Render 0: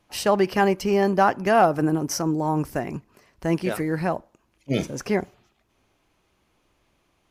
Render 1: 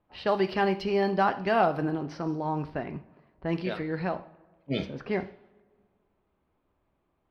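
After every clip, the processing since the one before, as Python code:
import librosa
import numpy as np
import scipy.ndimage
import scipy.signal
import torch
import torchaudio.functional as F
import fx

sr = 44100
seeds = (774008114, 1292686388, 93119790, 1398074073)

y = fx.high_shelf_res(x, sr, hz=5400.0, db=-9.5, q=3.0)
y = fx.rev_double_slope(y, sr, seeds[0], early_s=0.49, late_s=2.0, knee_db=-18, drr_db=9.0)
y = fx.env_lowpass(y, sr, base_hz=1200.0, full_db=-15.0)
y = y * librosa.db_to_amplitude(-6.5)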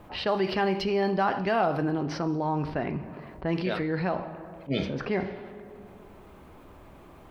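y = fx.env_flatten(x, sr, amount_pct=50)
y = y * librosa.db_to_amplitude(-2.5)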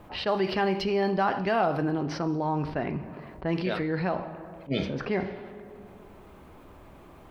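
y = fx.attack_slew(x, sr, db_per_s=400.0)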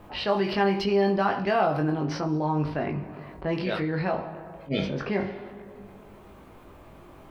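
y = fx.doubler(x, sr, ms=20.0, db=-4)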